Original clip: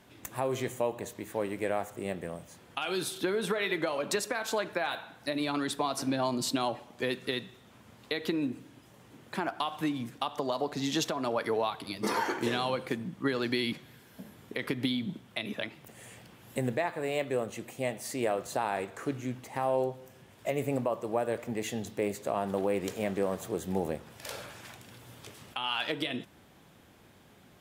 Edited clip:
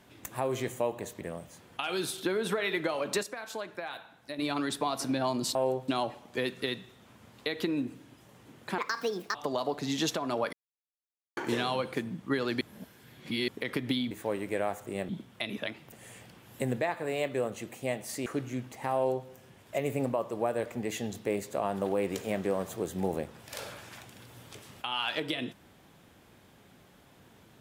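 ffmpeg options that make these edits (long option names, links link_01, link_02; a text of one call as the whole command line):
ffmpeg -i in.wav -filter_complex "[0:a]asplit=15[link_01][link_02][link_03][link_04][link_05][link_06][link_07][link_08][link_09][link_10][link_11][link_12][link_13][link_14][link_15];[link_01]atrim=end=1.212[link_16];[link_02]atrim=start=2.188:end=4.212[link_17];[link_03]atrim=start=4.208:end=5.372,asetpts=PTS-STARTPTS,volume=-7dB[link_18];[link_04]atrim=start=5.368:end=6.532[link_19];[link_05]atrim=start=19.668:end=20.002[link_20];[link_06]atrim=start=6.528:end=9.434[link_21];[link_07]atrim=start=9.43:end=10.29,asetpts=PTS-STARTPTS,asetrate=66591,aresample=44100[link_22];[link_08]atrim=start=10.286:end=11.47,asetpts=PTS-STARTPTS,afade=type=out:start_time=1.18:duration=0.004:curve=hsin[link_23];[link_09]atrim=start=11.47:end=12.31,asetpts=PTS-STARTPTS,volume=0[link_24];[link_10]atrim=start=12.31:end=13.552,asetpts=PTS-STARTPTS,afade=type=in:duration=0.004:curve=hsin[link_25];[link_11]atrim=start=13.548:end=14.422,asetpts=PTS-STARTPTS,areverse[link_26];[link_12]atrim=start=14.418:end=15.052[link_27];[link_13]atrim=start=1.208:end=2.192[link_28];[link_14]atrim=start=15.048:end=18.222[link_29];[link_15]atrim=start=18.978[link_30];[link_16][link_17]acrossfade=duration=0.004:curve1=hsin:curve2=hsin[link_31];[link_31][link_18]acrossfade=duration=0.004:curve1=hsin:curve2=hsin[link_32];[link_32][link_19]acrossfade=duration=0.004:curve1=hsin:curve2=hsin[link_33];[link_33][link_20]acrossfade=duration=0.004:curve1=hsin:curve2=hsin[link_34];[link_34][link_21]acrossfade=duration=0.004:curve1=hsin:curve2=hsin[link_35];[link_35][link_22]acrossfade=duration=0.004:curve1=hsin:curve2=hsin[link_36];[link_23][link_24][link_25]concat=n=3:v=0:a=1[link_37];[link_36][link_37]acrossfade=duration=0.004:curve1=hsin:curve2=hsin[link_38];[link_38][link_26]acrossfade=duration=0.004:curve1=hsin:curve2=hsin[link_39];[link_39][link_27]acrossfade=duration=0.004:curve1=hsin:curve2=hsin[link_40];[link_40][link_28]acrossfade=duration=0.004:curve1=hsin:curve2=hsin[link_41];[link_41][link_29]acrossfade=duration=0.004:curve1=hsin:curve2=hsin[link_42];[link_42][link_30]acrossfade=duration=0.004:curve1=hsin:curve2=hsin" out.wav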